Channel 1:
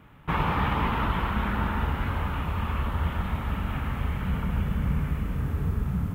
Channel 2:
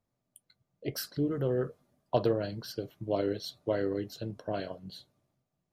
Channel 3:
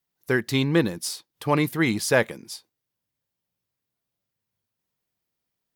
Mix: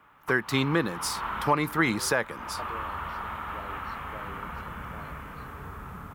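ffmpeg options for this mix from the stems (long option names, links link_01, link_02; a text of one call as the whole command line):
ffmpeg -i stem1.wav -i stem2.wav -i stem3.wav -filter_complex "[0:a]acrossover=split=200|3000[link_01][link_02][link_03];[link_02]acompressor=threshold=-30dB:ratio=6[link_04];[link_01][link_04][link_03]amix=inputs=3:normalize=0,bass=frequency=250:gain=-10,treble=frequency=4000:gain=3,volume=-8dB,asplit=2[link_05][link_06];[link_06]volume=-5.5dB[link_07];[1:a]adelay=450,volume=-19dB[link_08];[2:a]highpass=frequency=100:width=0.5412,highpass=frequency=100:width=1.3066,volume=-2dB,asplit=2[link_09][link_10];[link_10]apad=whole_len=271141[link_11];[link_05][link_11]sidechaincompress=threshold=-34dB:ratio=8:attack=7.2:release=243[link_12];[link_07]aecho=0:1:232:1[link_13];[link_12][link_08][link_09][link_13]amix=inputs=4:normalize=0,equalizer=frequency=1200:width=1:gain=11,alimiter=limit=-11.5dB:level=0:latency=1:release=277" out.wav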